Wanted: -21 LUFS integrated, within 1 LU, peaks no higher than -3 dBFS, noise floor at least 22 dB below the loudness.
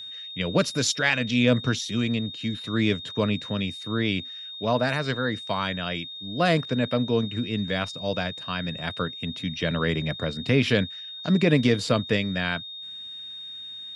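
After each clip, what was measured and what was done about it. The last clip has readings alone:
steady tone 3700 Hz; tone level -36 dBFS; loudness -26.0 LUFS; peak -7.0 dBFS; loudness target -21.0 LUFS
-> notch 3700 Hz, Q 30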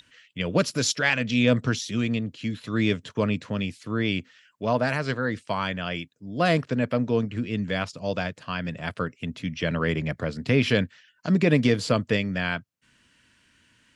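steady tone none; loudness -26.0 LUFS; peak -6.5 dBFS; loudness target -21.0 LUFS
-> gain +5 dB; limiter -3 dBFS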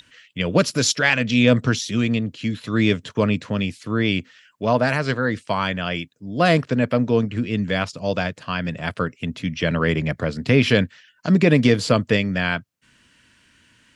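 loudness -21.0 LUFS; peak -3.0 dBFS; noise floor -60 dBFS

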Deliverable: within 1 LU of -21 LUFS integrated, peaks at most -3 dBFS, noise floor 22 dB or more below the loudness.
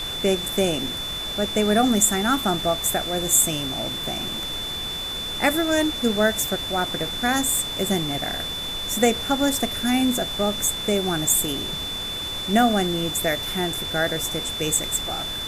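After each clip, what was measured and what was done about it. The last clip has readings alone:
steady tone 3500 Hz; tone level -28 dBFS; noise floor -30 dBFS; noise floor target -45 dBFS; loudness -22.5 LUFS; peak -5.0 dBFS; loudness target -21.0 LUFS
-> notch 3500 Hz, Q 30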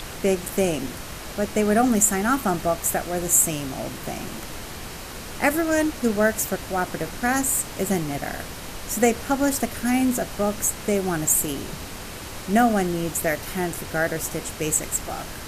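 steady tone none; noise floor -36 dBFS; noise floor target -45 dBFS
-> noise print and reduce 9 dB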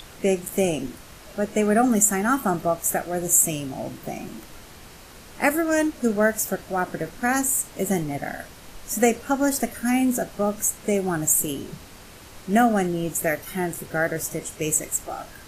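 noise floor -45 dBFS; loudness -23.0 LUFS; peak -5.5 dBFS; loudness target -21.0 LUFS
-> gain +2 dB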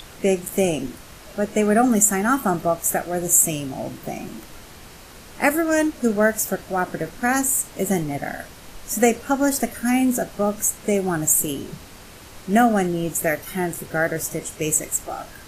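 loudness -21.0 LUFS; peak -3.5 dBFS; noise floor -43 dBFS

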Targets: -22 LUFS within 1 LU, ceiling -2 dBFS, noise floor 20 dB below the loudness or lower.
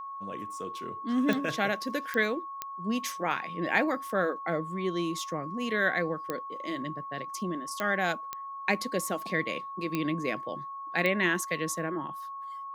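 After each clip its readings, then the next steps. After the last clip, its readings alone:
clicks 8; steady tone 1100 Hz; tone level -37 dBFS; loudness -31.0 LUFS; peak -11.5 dBFS; loudness target -22.0 LUFS
-> de-click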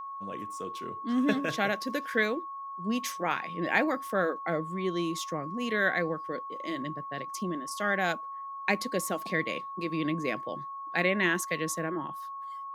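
clicks 0; steady tone 1100 Hz; tone level -37 dBFS
-> notch 1100 Hz, Q 30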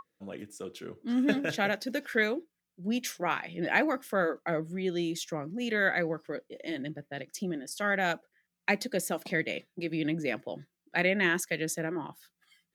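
steady tone none; loudness -31.0 LUFS; peak -11.5 dBFS; loudness target -22.0 LUFS
-> gain +9 dB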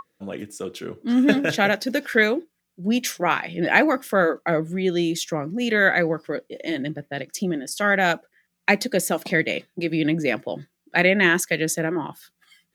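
loudness -22.0 LUFS; peak -2.5 dBFS; noise floor -76 dBFS

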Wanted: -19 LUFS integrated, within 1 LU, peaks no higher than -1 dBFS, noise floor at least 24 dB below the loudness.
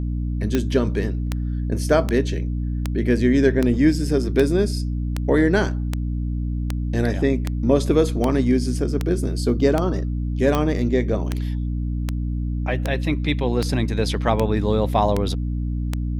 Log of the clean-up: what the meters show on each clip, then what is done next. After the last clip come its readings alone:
clicks 21; hum 60 Hz; harmonics up to 300 Hz; hum level -21 dBFS; loudness -22.0 LUFS; peak -4.5 dBFS; loudness target -19.0 LUFS
-> de-click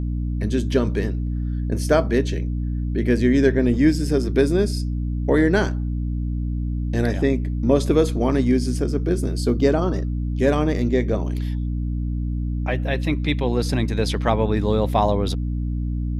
clicks 0; hum 60 Hz; harmonics up to 300 Hz; hum level -21 dBFS
-> notches 60/120/180/240/300 Hz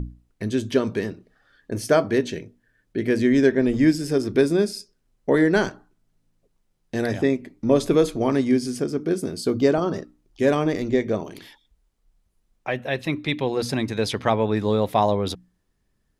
hum none; loudness -22.5 LUFS; peak -5.5 dBFS; loudness target -19.0 LUFS
-> gain +3.5 dB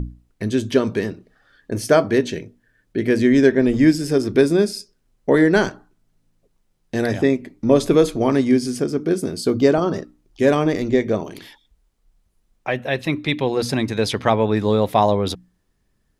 loudness -19.0 LUFS; peak -2.0 dBFS; noise floor -67 dBFS

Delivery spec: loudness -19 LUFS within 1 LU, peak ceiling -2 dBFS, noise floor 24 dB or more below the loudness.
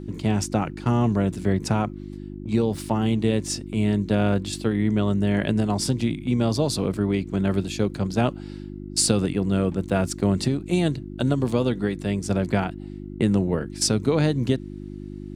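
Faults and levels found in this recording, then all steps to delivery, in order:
hum 50 Hz; harmonics up to 350 Hz; hum level -34 dBFS; loudness -24.0 LUFS; peak -5.0 dBFS; loudness target -19.0 LUFS
-> de-hum 50 Hz, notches 7; gain +5 dB; limiter -2 dBFS

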